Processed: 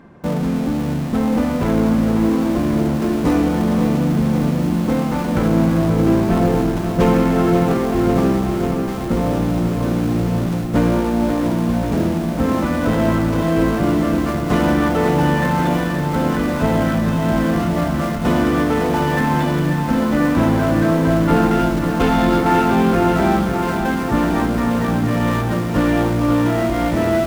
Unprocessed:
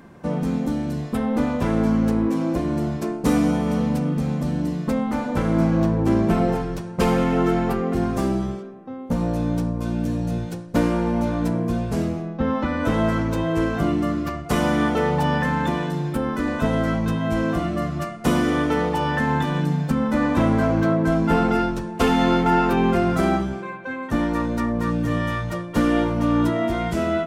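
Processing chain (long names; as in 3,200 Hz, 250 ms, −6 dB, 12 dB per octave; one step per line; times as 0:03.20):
phase distortion by the signal itself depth 0.094 ms
high-shelf EQ 5,000 Hz −12 dB
in parallel at −10 dB: comparator with hysteresis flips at −34.5 dBFS
on the sum: feedback echo at a low word length 540 ms, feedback 80%, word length 7 bits, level −8 dB
level +1.5 dB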